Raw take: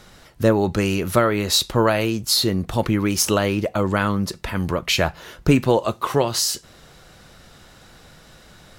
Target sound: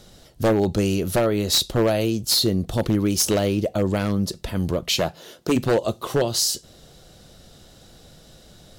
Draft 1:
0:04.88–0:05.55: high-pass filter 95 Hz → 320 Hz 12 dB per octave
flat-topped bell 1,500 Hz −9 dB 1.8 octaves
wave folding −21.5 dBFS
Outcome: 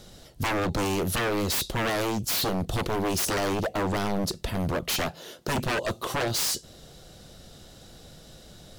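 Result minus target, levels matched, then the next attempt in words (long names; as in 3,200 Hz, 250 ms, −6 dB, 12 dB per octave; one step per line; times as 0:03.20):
wave folding: distortion +19 dB
0:04.88–0:05.55: high-pass filter 95 Hz → 320 Hz 12 dB per octave
flat-topped bell 1,500 Hz −9 dB 1.8 octaves
wave folding −12 dBFS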